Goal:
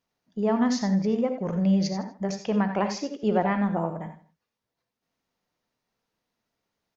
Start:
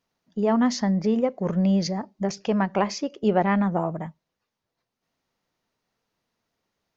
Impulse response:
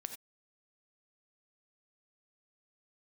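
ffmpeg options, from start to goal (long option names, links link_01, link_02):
-filter_complex "[0:a]aecho=1:1:159:0.0891[link_01];[1:a]atrim=start_sample=2205[link_02];[link_01][link_02]afir=irnorm=-1:irlink=0"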